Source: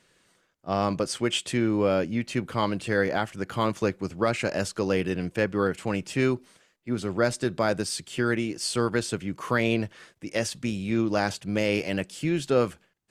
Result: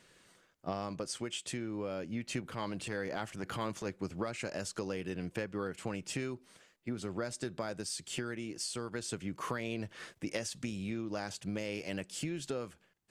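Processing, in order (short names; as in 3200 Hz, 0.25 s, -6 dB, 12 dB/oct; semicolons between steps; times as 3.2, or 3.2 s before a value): dynamic EQ 7100 Hz, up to +5 dB, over -46 dBFS, Q 1; compressor 8:1, threshold -34 dBFS, peak gain reduction 16.5 dB; 2.41–3.9 transient shaper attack -8 dB, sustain +2 dB; vocal rider within 4 dB 0.5 s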